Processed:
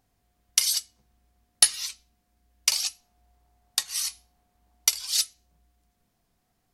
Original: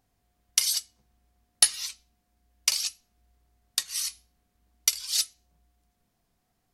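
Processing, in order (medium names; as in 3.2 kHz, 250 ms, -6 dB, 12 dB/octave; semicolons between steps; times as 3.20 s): 2.72–5.11 s: peaking EQ 810 Hz +8.5 dB 0.73 oct; trim +1.5 dB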